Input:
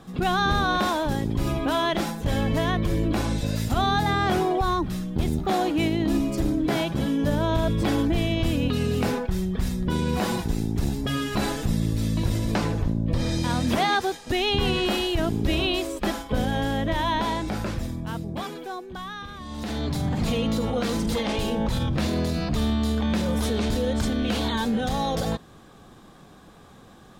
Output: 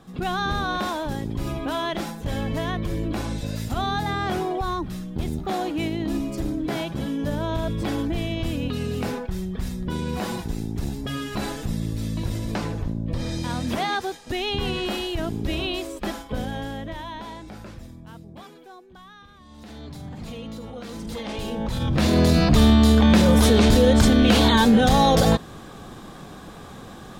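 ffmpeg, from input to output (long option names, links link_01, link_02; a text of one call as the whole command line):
ffmpeg -i in.wav -af "volume=17dB,afade=type=out:start_time=16.23:duration=0.86:silence=0.398107,afade=type=in:start_time=20.86:duration=0.91:silence=0.334965,afade=type=in:start_time=21.77:duration=0.55:silence=0.298538" out.wav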